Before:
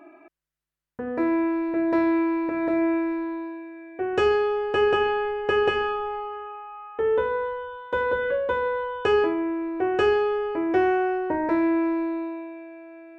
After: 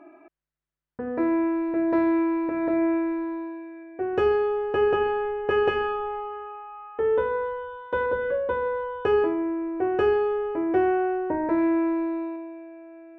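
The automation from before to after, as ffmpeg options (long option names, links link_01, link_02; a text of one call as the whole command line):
ffmpeg -i in.wav -af "asetnsamples=nb_out_samples=441:pad=0,asendcmd='3.83 lowpass f 1200;5.51 lowpass f 2100;8.06 lowpass f 1200;11.58 lowpass f 1900;12.36 lowpass f 1000',lowpass=frequency=1800:poles=1" out.wav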